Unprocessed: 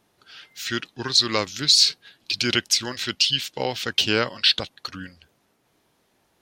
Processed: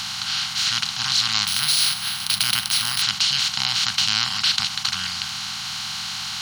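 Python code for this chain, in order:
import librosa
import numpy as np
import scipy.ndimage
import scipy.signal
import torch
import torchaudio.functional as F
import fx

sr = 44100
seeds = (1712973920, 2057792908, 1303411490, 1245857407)

y = fx.bin_compress(x, sr, power=0.2)
y = scipy.signal.sosfilt(scipy.signal.cheby2(4, 40, [280.0, 560.0], 'bandstop', fs=sr, output='sos'), y)
y = fx.resample_bad(y, sr, factor=3, down='filtered', up='hold', at=(1.47, 3.02))
y = y * 10.0 ** (-8.5 / 20.0)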